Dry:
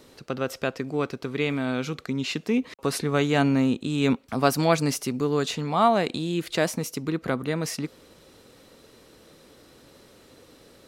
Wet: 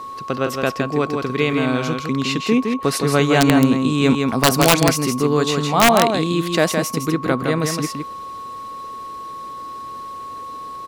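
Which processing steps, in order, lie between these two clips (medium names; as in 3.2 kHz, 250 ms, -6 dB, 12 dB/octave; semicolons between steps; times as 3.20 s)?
whistle 1.1 kHz -36 dBFS; delay 163 ms -5 dB; integer overflow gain 10.5 dB; trim +6.5 dB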